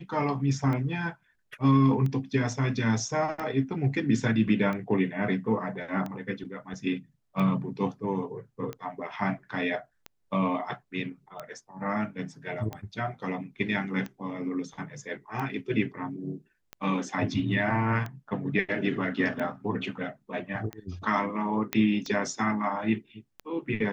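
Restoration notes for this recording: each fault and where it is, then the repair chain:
tick 45 rpm -22 dBFS
21.73 s: pop -11 dBFS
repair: de-click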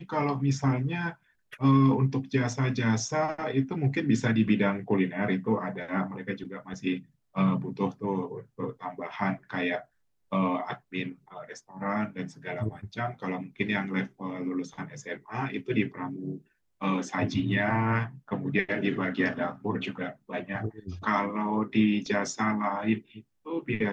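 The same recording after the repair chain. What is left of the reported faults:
nothing left

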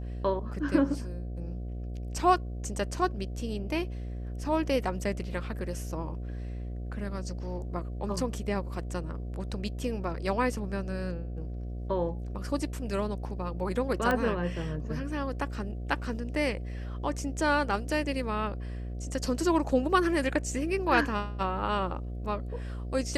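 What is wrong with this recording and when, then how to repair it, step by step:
buzz 60 Hz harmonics 12 -36 dBFS
14.11 s: pop -15 dBFS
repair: de-click; de-hum 60 Hz, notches 12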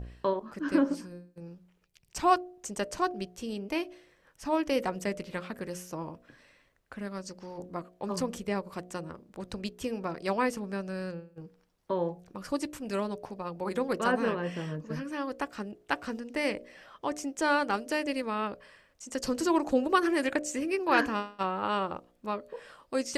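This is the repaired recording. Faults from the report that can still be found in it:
nothing left

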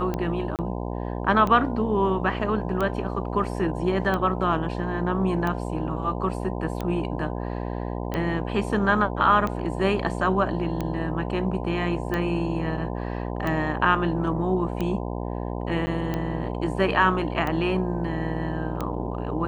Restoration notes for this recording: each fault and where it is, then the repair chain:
buzz 60 Hz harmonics 17 -30 dBFS
tick 45 rpm -15 dBFS
0.56–0.59 s: dropout 28 ms
15.86–15.87 s: dropout 10 ms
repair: de-click; de-hum 60 Hz, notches 17; interpolate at 0.56 s, 28 ms; interpolate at 15.86 s, 10 ms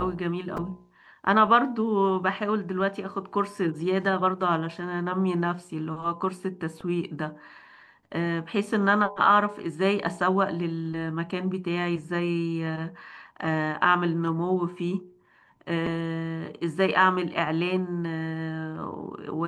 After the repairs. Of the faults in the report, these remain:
nothing left

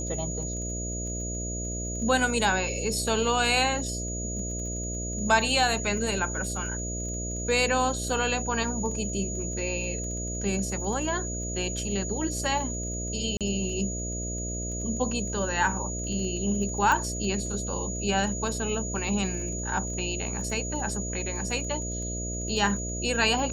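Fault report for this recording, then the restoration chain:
buzz 60 Hz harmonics 11 -34 dBFS
crackle 20 per s -37 dBFS
whine 6.8 kHz -34 dBFS
13.37–13.41 s: dropout 37 ms
16.92 s: pop -13 dBFS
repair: de-click; band-stop 6.8 kHz, Q 30; de-hum 60 Hz, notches 11; interpolate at 13.37 s, 37 ms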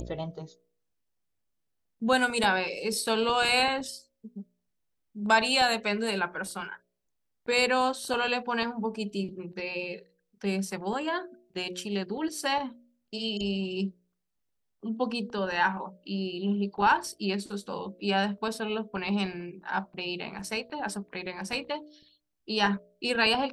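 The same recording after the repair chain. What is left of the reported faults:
nothing left

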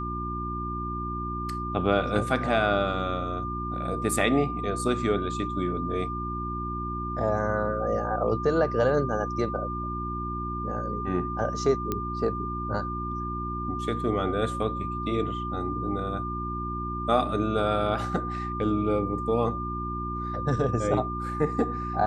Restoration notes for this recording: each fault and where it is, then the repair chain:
hum 60 Hz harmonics 6 -34 dBFS
whine 1.2 kHz -32 dBFS
11.92 s: pop -14 dBFS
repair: de-click; de-hum 60 Hz, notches 6; band-stop 1.2 kHz, Q 30

